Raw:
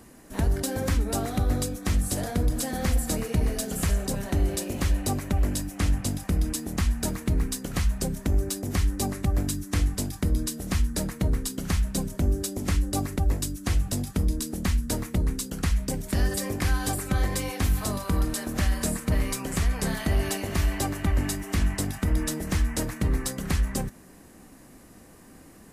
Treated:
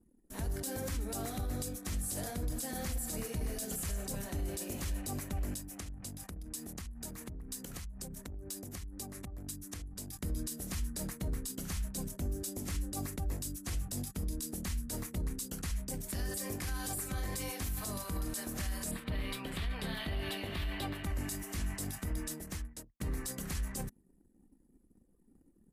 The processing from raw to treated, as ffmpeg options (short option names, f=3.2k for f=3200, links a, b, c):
-filter_complex "[0:a]asettb=1/sr,asplit=3[a][b][c];[a]atrim=end=5.544[d];[b]atrim=start=5.54:end=10.17,asetpts=PTS-STARTPTS,afade=t=in:d=0.004:c=qsin,afade=t=out:st=4.626:d=0.004:c=qsin,acompressor=threshold=-33dB:ratio=5:attack=3.2:release=140:knee=1:detection=peak[e];[c]atrim=start=10.166[f];[d][e]acrossfade=d=0.004:c1=hsin:c2=qsin[g];[g][f]acrossfade=d=0.004:c1=qsin:c2=hsin,asettb=1/sr,asplit=3[h][i][j];[h]atrim=end=18.914[k];[i]atrim=start=18.91:end=21.04,asetpts=PTS-STARTPTS,afade=t=in:d=0.004:c=qsin,afade=t=out:st=2.126:d=0.004:c=qsin,highshelf=f=4.8k:t=q:w=3:g=-10.5[l];[j]atrim=start=21.036[m];[k][l]acrossfade=d=0.004:c1=hsin:c2=qsin[n];[n][m]acrossfade=d=0.004:c1=qsin:c2=hsin,asplit=2[o][p];[o]atrim=end=23,asetpts=PTS-STARTPTS,afade=t=out:st=21.95:d=1.05[q];[p]atrim=start=23,asetpts=PTS-STARTPTS,afade=t=in:d=0.004:c=hsin[r];[q][r]concat=n=2:v=0:a=1,aemphasis=mode=production:type=cd,anlmdn=0.1,alimiter=limit=-20dB:level=0:latency=1:release=25,volume=-8.5dB"